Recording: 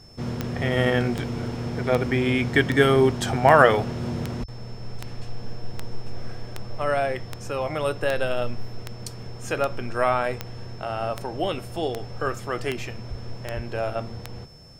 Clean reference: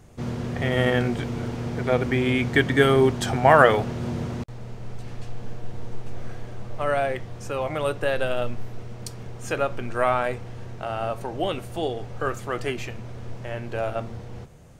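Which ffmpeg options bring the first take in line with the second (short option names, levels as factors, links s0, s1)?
-filter_complex "[0:a]adeclick=t=4,bandreject=f=5300:w=30,asplit=3[s0][s1][s2];[s0]afade=t=out:st=4.39:d=0.02[s3];[s1]highpass=f=140:w=0.5412,highpass=f=140:w=1.3066,afade=t=in:st=4.39:d=0.02,afade=t=out:st=4.51:d=0.02[s4];[s2]afade=t=in:st=4.51:d=0.02[s5];[s3][s4][s5]amix=inputs=3:normalize=0,asplit=3[s6][s7][s8];[s6]afade=t=out:st=13.09:d=0.02[s9];[s7]highpass=f=140:w=0.5412,highpass=f=140:w=1.3066,afade=t=in:st=13.09:d=0.02,afade=t=out:st=13.21:d=0.02[s10];[s8]afade=t=in:st=13.21:d=0.02[s11];[s9][s10][s11]amix=inputs=3:normalize=0,asplit=3[s12][s13][s14];[s12]afade=t=out:st=13.55:d=0.02[s15];[s13]highpass=f=140:w=0.5412,highpass=f=140:w=1.3066,afade=t=in:st=13.55:d=0.02,afade=t=out:st=13.67:d=0.02[s16];[s14]afade=t=in:st=13.67:d=0.02[s17];[s15][s16][s17]amix=inputs=3:normalize=0"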